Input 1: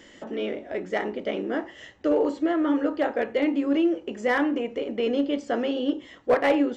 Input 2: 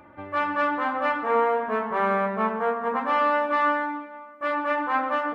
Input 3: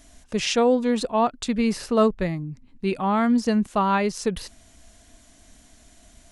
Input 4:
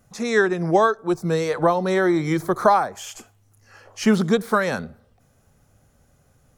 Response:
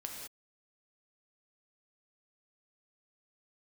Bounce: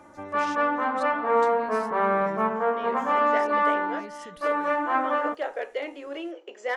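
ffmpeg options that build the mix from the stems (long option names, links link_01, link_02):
-filter_complex "[0:a]highpass=frequency=420:width=0.5412,highpass=frequency=420:width=1.3066,adelay=2400,volume=-4dB[link_01];[1:a]highshelf=frequency=2200:gain=-9.5,volume=2dB[link_02];[2:a]volume=-14.5dB[link_03];[3:a]alimiter=limit=-14dB:level=0:latency=1,aeval=exprs='val(0)*pow(10,-22*(0.5-0.5*cos(2*PI*1.3*n/s))/20)':channel_layout=same,volume=-19dB,asplit=2[link_04][link_05];[link_05]apad=whole_len=404396[link_06];[link_01][link_06]sidechaincompress=threshold=-59dB:ratio=8:attack=16:release=237[link_07];[link_03][link_04]amix=inputs=2:normalize=0,alimiter=level_in=10dB:limit=-24dB:level=0:latency=1,volume=-10dB,volume=0dB[link_08];[link_07][link_02][link_08]amix=inputs=3:normalize=0,lowshelf=frequency=140:gain=-9.5"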